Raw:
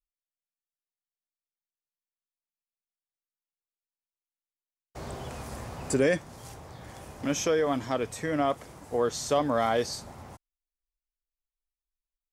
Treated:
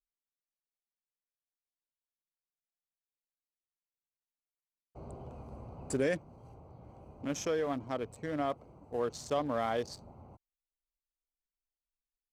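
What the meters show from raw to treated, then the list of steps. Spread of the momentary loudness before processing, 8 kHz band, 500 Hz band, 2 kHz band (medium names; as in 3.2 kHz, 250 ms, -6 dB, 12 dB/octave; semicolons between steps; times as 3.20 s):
20 LU, -10.0 dB, -7.0 dB, -8.0 dB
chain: local Wiener filter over 25 samples; trim -6.5 dB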